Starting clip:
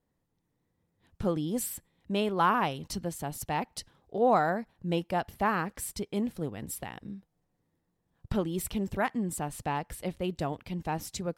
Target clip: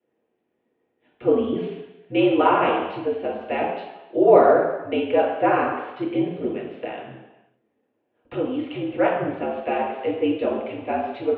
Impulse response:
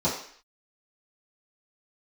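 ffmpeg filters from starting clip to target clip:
-filter_complex "[0:a]asettb=1/sr,asplit=3[s0][s1][s2];[s0]atrim=end=8.324[s3];[s1]atrim=start=8.32:end=8.89,asetpts=PTS-STARTPTS,afade=t=in:d=0.004:c=qsin,afade=t=out:st=0.566:d=0.004:c=qsin,acompressor=threshold=0.0355:ratio=6[s4];[s2]atrim=start=8.886[s5];[s3][s4]acrossfade=d=0.004:c1=hsin:c2=qsin[s6];[s6][s5]acrossfade=d=0.004:c1=qsin:c2=hsin[s7];[1:a]atrim=start_sample=2205,asetrate=26901,aresample=44100[s8];[s7][s8]afir=irnorm=-1:irlink=0,highpass=f=380:t=q:w=0.5412,highpass=f=380:t=q:w=1.307,lowpass=f=3000:t=q:w=0.5176,lowpass=f=3000:t=q:w=0.7071,lowpass=f=3000:t=q:w=1.932,afreqshift=-71,volume=0.562"

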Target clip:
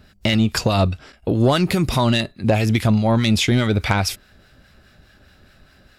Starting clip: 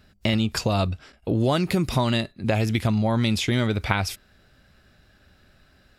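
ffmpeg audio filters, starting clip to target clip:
-filter_complex "[0:a]acrossover=split=980[s0][s1];[s0]aeval=exprs='val(0)*(1-0.5/2+0.5/2*cos(2*PI*4.8*n/s))':c=same[s2];[s1]aeval=exprs='val(0)*(1-0.5/2-0.5/2*cos(2*PI*4.8*n/s))':c=same[s3];[s2][s3]amix=inputs=2:normalize=0,aeval=exprs='0.501*(cos(1*acos(clip(val(0)/0.501,-1,1)))-cos(1*PI/2))+0.0708*(cos(5*acos(clip(val(0)/0.501,-1,1)))-cos(5*PI/2))':c=same,volume=1.5"

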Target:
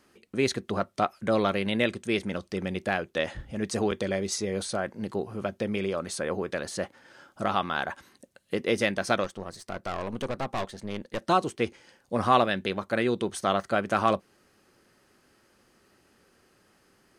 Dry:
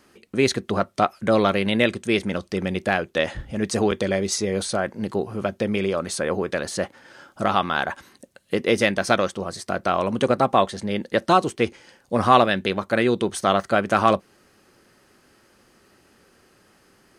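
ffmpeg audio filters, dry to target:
-filter_complex "[0:a]asettb=1/sr,asplit=3[s0][s1][s2];[s0]atrim=end=9.244[s3];[s1]atrim=start=9.24:end=11.27,asetpts=PTS-STARTPTS,afade=t=in:d=0.004:c=qsin,afade=t=out:st=2.026:d=0.004:c=qsin,aeval=exprs='(tanh(10*val(0)+0.75)-tanh(0.75))/10':c=same[s4];[s2]atrim=start=11.266[s5];[s3][s4]acrossfade=d=0.004:c1=hsin:c2=qsin[s6];[s6][s5]acrossfade=d=0.004:c1=qsin:c2=hsin,volume=0.501"

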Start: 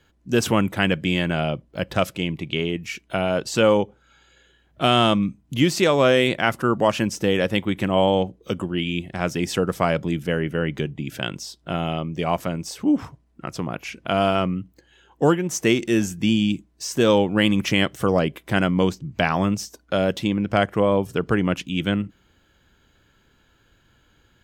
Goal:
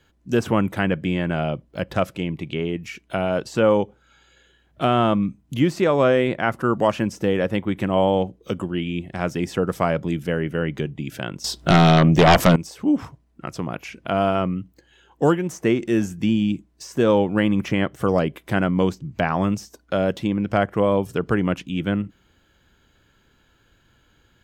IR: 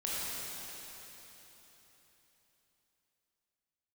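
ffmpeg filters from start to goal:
-filter_complex "[0:a]acrossover=split=2000[s0][s1];[s1]acompressor=threshold=0.0126:ratio=6[s2];[s0][s2]amix=inputs=2:normalize=0,asettb=1/sr,asplit=3[s3][s4][s5];[s3]atrim=end=11.444[s6];[s4]atrim=start=11.44:end=12.56,asetpts=PTS-STARTPTS,afade=t=in:d=0.004:c=qsin,afade=t=out:st=1.116:d=0.004:c=qsin,aeval=exprs='0.398*sin(PI/2*3.98*val(0)/0.398)':c=same[s7];[s5]atrim=start=12.556[s8];[s6][s7]acrossfade=d=0.004:c1=hsin:c2=qsin[s9];[s9][s8]acrossfade=d=0.004:c1=qsin:c2=hsin"

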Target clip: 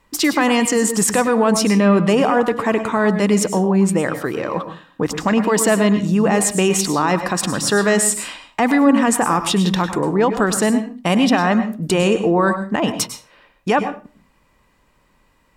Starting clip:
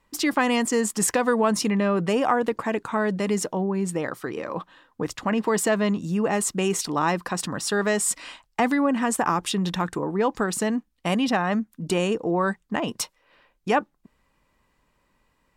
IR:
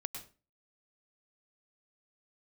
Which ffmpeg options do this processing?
-filter_complex "[0:a]alimiter=limit=0.168:level=0:latency=1:release=27,asplit=2[s0][s1];[1:a]atrim=start_sample=2205[s2];[s1][s2]afir=irnorm=-1:irlink=0,volume=1.88[s3];[s0][s3]amix=inputs=2:normalize=0"

